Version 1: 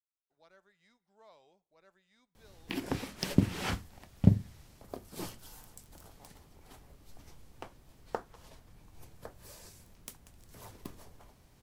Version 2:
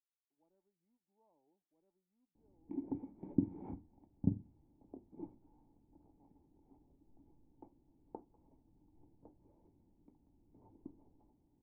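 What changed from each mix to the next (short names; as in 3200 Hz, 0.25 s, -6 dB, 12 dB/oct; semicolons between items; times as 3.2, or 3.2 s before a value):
master: add vocal tract filter u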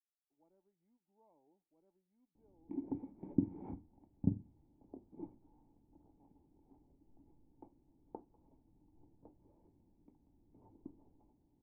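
speech +4.5 dB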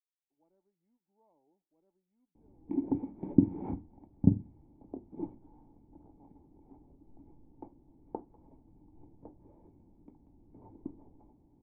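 background +9.5 dB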